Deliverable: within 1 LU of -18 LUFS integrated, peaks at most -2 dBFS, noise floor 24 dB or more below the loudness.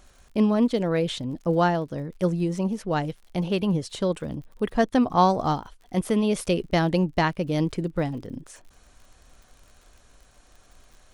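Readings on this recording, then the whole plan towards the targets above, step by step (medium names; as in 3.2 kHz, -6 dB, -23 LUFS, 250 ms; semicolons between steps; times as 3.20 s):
tick rate 53 per s; loudness -25.0 LUFS; peak level -8.0 dBFS; loudness target -18.0 LUFS
-> de-click; trim +7 dB; peak limiter -2 dBFS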